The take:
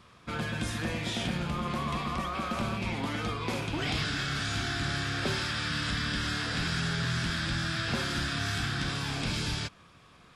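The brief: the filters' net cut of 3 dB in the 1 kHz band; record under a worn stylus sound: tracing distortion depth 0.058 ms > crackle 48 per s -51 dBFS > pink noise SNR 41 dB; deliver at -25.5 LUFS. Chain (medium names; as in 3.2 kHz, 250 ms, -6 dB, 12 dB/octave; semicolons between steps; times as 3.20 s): peaking EQ 1 kHz -4 dB; tracing distortion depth 0.058 ms; crackle 48 per s -51 dBFS; pink noise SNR 41 dB; trim +6.5 dB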